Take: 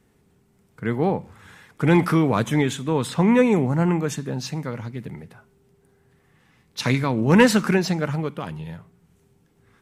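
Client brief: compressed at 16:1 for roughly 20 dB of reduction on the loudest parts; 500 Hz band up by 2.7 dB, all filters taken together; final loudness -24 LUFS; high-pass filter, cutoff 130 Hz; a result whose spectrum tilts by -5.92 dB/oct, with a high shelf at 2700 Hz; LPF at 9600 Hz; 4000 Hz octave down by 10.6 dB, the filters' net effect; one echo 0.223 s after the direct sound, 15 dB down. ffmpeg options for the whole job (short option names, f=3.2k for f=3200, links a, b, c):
-af "highpass=130,lowpass=9.6k,equalizer=f=500:t=o:g=3.5,highshelf=f=2.7k:g=-6.5,equalizer=f=4k:t=o:g=-8.5,acompressor=threshold=-29dB:ratio=16,aecho=1:1:223:0.178,volume=11dB"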